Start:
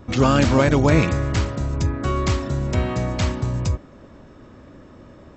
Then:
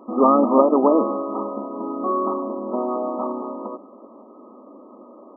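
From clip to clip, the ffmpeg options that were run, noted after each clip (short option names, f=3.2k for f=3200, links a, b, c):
-af "aemphasis=mode=production:type=bsi,afftfilt=real='re*between(b*sr/4096,200,1300)':imag='im*between(b*sr/4096,200,1300)':win_size=4096:overlap=0.75,volume=5dB"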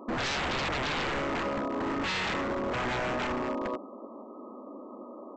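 -af "alimiter=limit=-11.5dB:level=0:latency=1:release=20,aresample=16000,aeval=exprs='0.0501*(abs(mod(val(0)/0.0501+3,4)-2)-1)':c=same,aresample=44100"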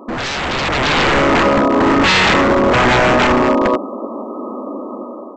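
-af "dynaudnorm=f=330:g=5:m=10dB,volume=9dB"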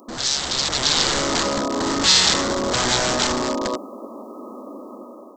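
-af "aexciter=amount=11.9:drive=1.7:freq=3.7k,volume=-10.5dB"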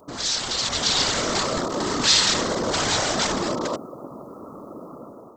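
-af "afftfilt=real='hypot(re,im)*cos(2*PI*random(0))':imag='hypot(re,im)*sin(2*PI*random(1))':win_size=512:overlap=0.75,volume=3.5dB"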